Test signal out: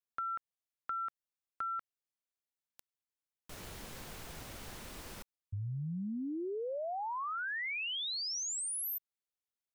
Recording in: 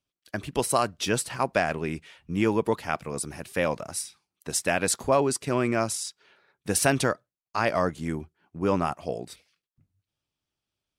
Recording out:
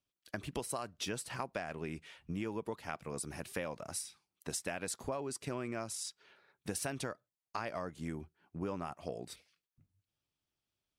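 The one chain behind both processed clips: compressor 6:1, threshold -32 dBFS; gain -4 dB

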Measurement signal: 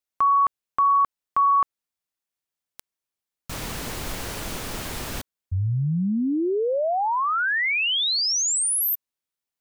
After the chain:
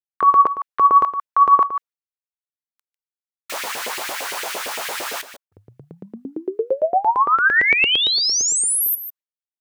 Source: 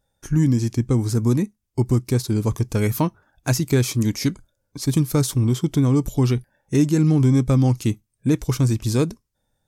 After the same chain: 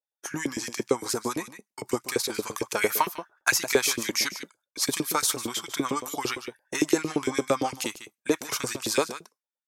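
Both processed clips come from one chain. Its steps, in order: expander -37 dBFS, range -33 dB; echo 0.149 s -13 dB; dynamic EQ 500 Hz, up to -4 dB, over -33 dBFS, Q 1.2; in parallel at -2 dB: compressor, threshold -25 dBFS; on the sum: LFO high-pass saw up 8.8 Hz 410–2500 Hz

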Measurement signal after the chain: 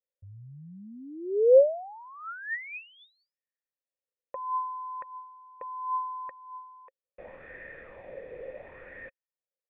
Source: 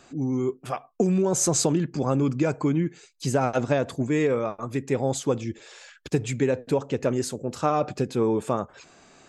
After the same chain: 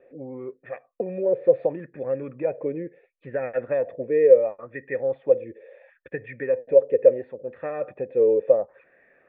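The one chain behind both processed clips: vocal tract filter e; LFO bell 0.72 Hz 440–1800 Hz +13 dB; gain +4 dB

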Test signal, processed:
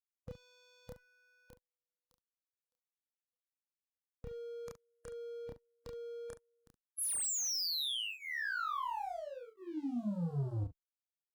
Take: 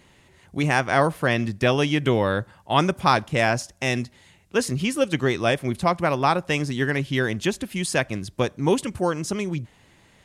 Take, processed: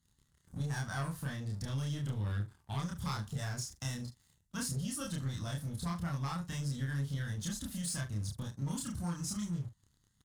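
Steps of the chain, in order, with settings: bin magnitudes rounded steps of 15 dB; fixed phaser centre 990 Hz, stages 4; in parallel at -7 dB: soft clip -21 dBFS; on the sum: added harmonics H 3 -29 dB, 4 -44 dB, 5 -44 dB, 6 -37 dB, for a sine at -4.5 dBFS; passive tone stack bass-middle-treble 6-0-2; sample leveller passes 3; compressor 4:1, threshold -39 dBFS; loudspeakers at several distances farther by 10 m 0 dB, 24 m -11 dB

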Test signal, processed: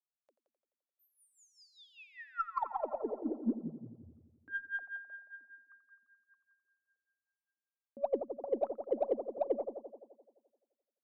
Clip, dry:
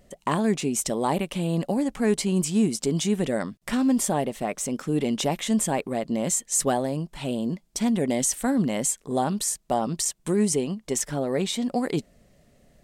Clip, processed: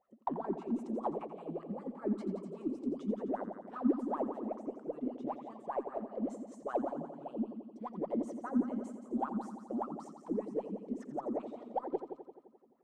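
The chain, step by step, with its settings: wah 5.1 Hz 220–1300 Hz, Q 16; multi-head echo 86 ms, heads first and second, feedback 52%, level -12 dB; added harmonics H 8 -40 dB, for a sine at -20 dBFS; gain +2 dB

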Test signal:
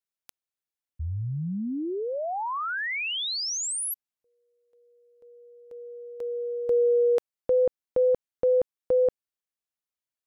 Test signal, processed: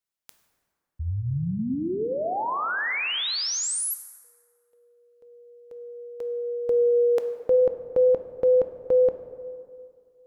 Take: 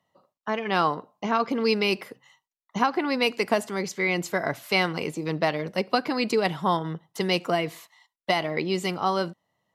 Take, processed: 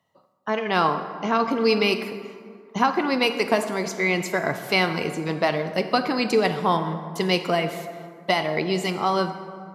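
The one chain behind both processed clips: plate-style reverb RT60 2.2 s, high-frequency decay 0.5×, DRR 7.5 dB; gain +2 dB

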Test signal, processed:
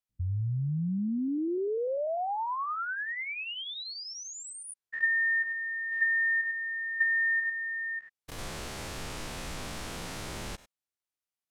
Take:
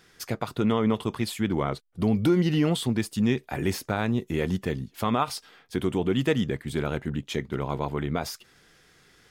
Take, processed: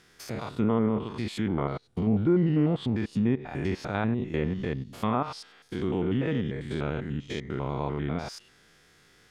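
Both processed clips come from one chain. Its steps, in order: stepped spectrum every 0.1 s; treble ducked by the level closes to 1500 Hz, closed at -21 dBFS

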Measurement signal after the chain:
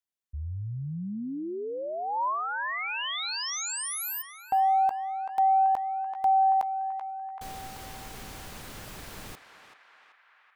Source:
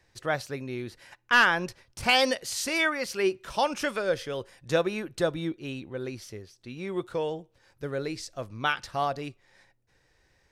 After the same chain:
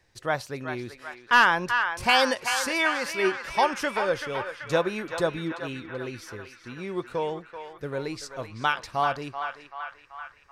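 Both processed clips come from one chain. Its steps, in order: dynamic EQ 980 Hz, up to +7 dB, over -45 dBFS, Q 2.8; on a send: narrowing echo 0.384 s, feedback 72%, band-pass 1600 Hz, level -6 dB

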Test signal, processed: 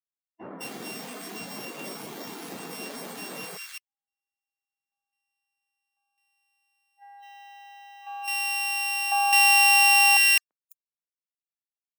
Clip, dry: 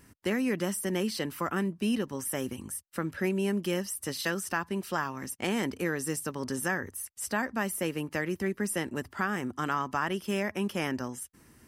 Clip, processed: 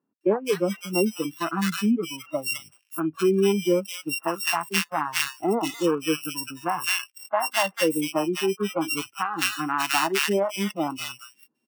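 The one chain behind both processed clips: sample sorter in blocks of 16 samples; HPF 190 Hz 24 dB/oct; spectral noise reduction 26 dB; dynamic EQ 570 Hz, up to +5 dB, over -44 dBFS, Q 0.72; bands offset in time lows, highs 0.21 s, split 1500 Hz; gain +8.5 dB

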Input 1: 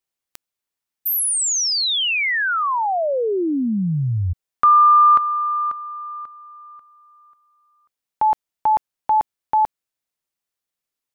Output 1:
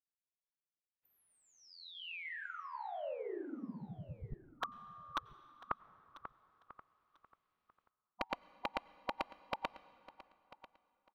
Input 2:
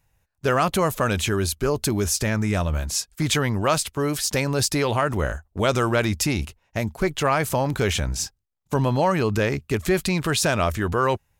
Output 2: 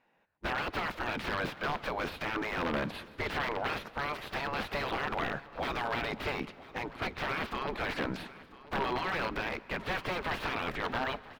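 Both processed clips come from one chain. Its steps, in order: spectral gate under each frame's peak -15 dB weak; in parallel at +1 dB: limiter -21.5 dBFS; on the sum: wrapped overs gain 21 dB; air absorption 370 m; on a send: feedback echo 0.993 s, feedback 20%, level -18.5 dB; on the sum: plate-style reverb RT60 3.1 s, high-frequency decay 0.65×, pre-delay 80 ms, DRR 19.5 dB

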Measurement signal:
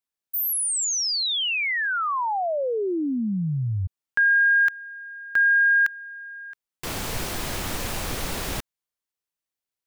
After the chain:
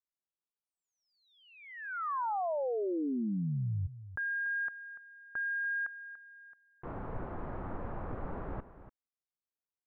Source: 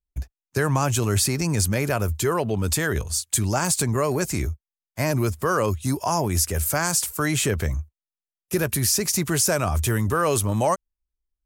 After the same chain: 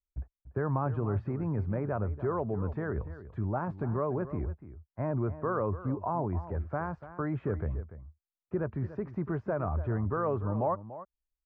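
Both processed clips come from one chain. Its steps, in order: LPF 1300 Hz 24 dB/oct; on a send: echo 0.29 s -14 dB; on the sum: gain -8 dB

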